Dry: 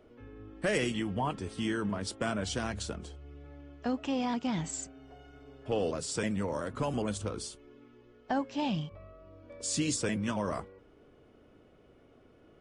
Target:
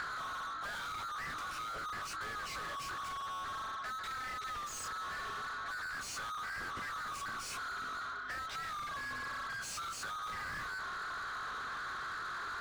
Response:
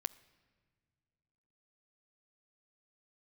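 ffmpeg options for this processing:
-filter_complex "[0:a]afftfilt=real='real(if(lt(b,960),b+48*(1-2*mod(floor(b/48),2)),b),0)':imag='imag(if(lt(b,960),b+48*(1-2*mod(floor(b/48),2)),b),0)':win_size=2048:overlap=0.75,areverse,acompressor=threshold=-46dB:ratio=4,areverse,aeval=exprs='val(0)+0.0001*(sin(2*PI*50*n/s)+sin(2*PI*2*50*n/s)/2+sin(2*PI*3*50*n/s)/3+sin(2*PI*4*50*n/s)/4+sin(2*PI*5*50*n/s)/5)':c=same,flanger=delay=19:depth=7.4:speed=0.88,asplit=2[a][b];[b]highpass=f=720:p=1,volume=36dB,asoftclip=type=tanh:threshold=-37dB[c];[a][c]amix=inputs=2:normalize=0,lowpass=f=3.5k:p=1,volume=-6dB,acrossover=split=140[d][e];[e]acompressor=threshold=-51dB:ratio=10[f];[d][f]amix=inputs=2:normalize=0,volume=11dB"

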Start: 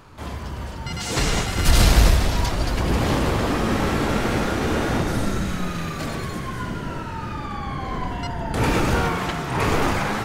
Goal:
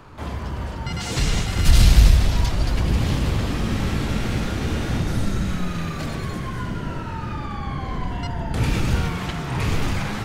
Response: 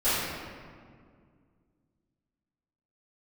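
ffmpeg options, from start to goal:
-filter_complex "[0:a]highshelf=f=3.9k:g=-7.5,acrossover=split=200|2400[a][b][c];[b]acompressor=threshold=-34dB:ratio=6[d];[a][d][c]amix=inputs=3:normalize=0,volume=3dB"

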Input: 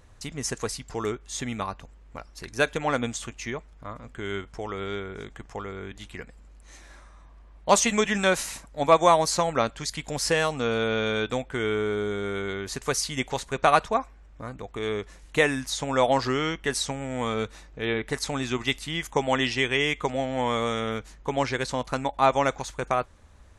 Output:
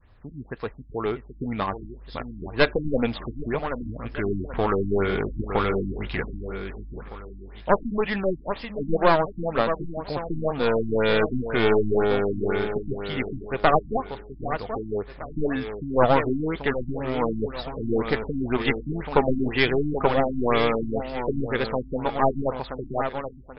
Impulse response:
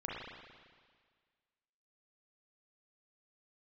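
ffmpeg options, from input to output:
-af "adynamicequalizer=threshold=0.0251:dfrequency=540:dqfactor=0.93:tfrequency=540:tqfactor=0.93:attack=5:release=100:ratio=0.375:range=2:mode=boostabove:tftype=bell,dynaudnorm=f=160:g=17:m=16dB,aeval=exprs='clip(val(0),-1,0.075)':c=same,aecho=1:1:781|1562|2343|3124:0.355|0.124|0.0435|0.0152,afftfilt=real='re*lt(b*sr/1024,320*pow(5400/320,0.5+0.5*sin(2*PI*2*pts/sr)))':imag='im*lt(b*sr/1024,320*pow(5400/320,0.5+0.5*sin(2*PI*2*pts/sr)))':win_size=1024:overlap=0.75,volume=-2dB"

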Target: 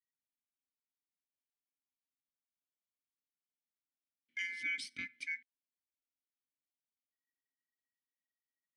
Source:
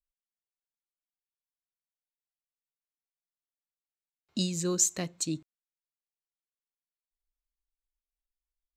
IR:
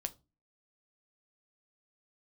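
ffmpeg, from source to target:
-filter_complex "[0:a]aeval=exprs='val(0)*sin(2*PI*1900*n/s)':c=same,asplit=3[a][b][c];[a]bandpass=f=270:t=q:w=8,volume=0dB[d];[b]bandpass=f=2.29k:t=q:w=8,volume=-6dB[e];[c]bandpass=f=3.01k:t=q:w=8,volume=-9dB[f];[d][e][f]amix=inputs=3:normalize=0,bass=f=250:g=10,treble=f=4k:g=0,volume=5.5dB"

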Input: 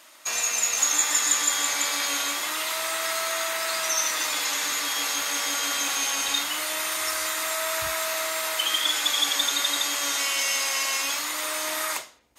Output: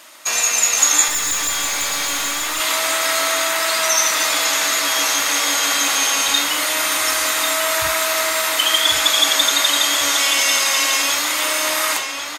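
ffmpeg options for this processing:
-filter_complex "[0:a]asplit=2[a][b];[b]adelay=1095,lowpass=f=4.8k:p=1,volume=-6dB,asplit=2[c][d];[d]adelay=1095,lowpass=f=4.8k:p=1,volume=0.46,asplit=2[e][f];[f]adelay=1095,lowpass=f=4.8k:p=1,volume=0.46,asplit=2[g][h];[h]adelay=1095,lowpass=f=4.8k:p=1,volume=0.46,asplit=2[i][j];[j]adelay=1095,lowpass=f=4.8k:p=1,volume=0.46,asplit=2[k][l];[l]adelay=1095,lowpass=f=4.8k:p=1,volume=0.46[m];[a][c][e][g][i][k][m]amix=inputs=7:normalize=0,asettb=1/sr,asplit=3[n][o][p];[n]atrim=end=1.084[q];[o]atrim=start=1.08:end=2.6,asetpts=PTS-STARTPTS,afade=t=in:d=0.004:c=qsin,afade=t=out:st=1.516:d=0.004:c=qsin,aeval=exprs='(tanh(17.8*val(0)+0.35)-tanh(0.35))/17.8':c=same[r];[p]atrim=start=2.596[s];[q][r]acrossfade=d=0.004:c1=hsin:c2=qsin[t];[t][s]acrossfade=d=0.004:c1=qsin:c2=hsin,volume=8dB"

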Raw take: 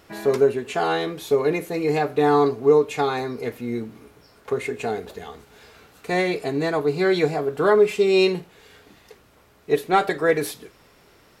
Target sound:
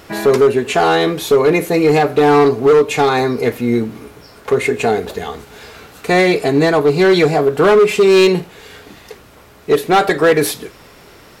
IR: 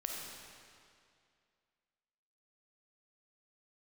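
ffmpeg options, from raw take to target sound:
-filter_complex "[0:a]asplit=2[a][b];[b]alimiter=limit=-17.5dB:level=0:latency=1:release=151,volume=1.5dB[c];[a][c]amix=inputs=2:normalize=0,volume=11.5dB,asoftclip=hard,volume=-11.5dB,volume=5.5dB"

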